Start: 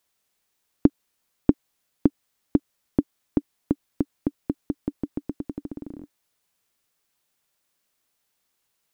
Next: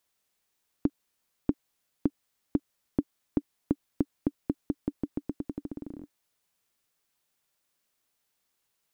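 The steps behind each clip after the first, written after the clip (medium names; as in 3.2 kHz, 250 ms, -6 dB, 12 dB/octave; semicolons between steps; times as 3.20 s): peak limiter -9 dBFS, peak gain reduction 7.5 dB; trim -3 dB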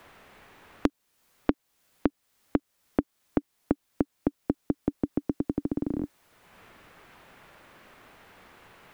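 three bands compressed up and down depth 100%; trim +3.5 dB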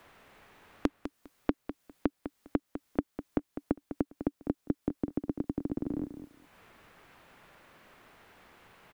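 feedback delay 202 ms, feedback 18%, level -10.5 dB; trim -4.5 dB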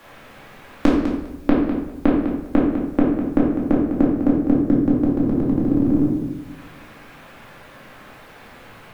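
simulated room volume 360 m³, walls mixed, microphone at 2.3 m; trim +7.5 dB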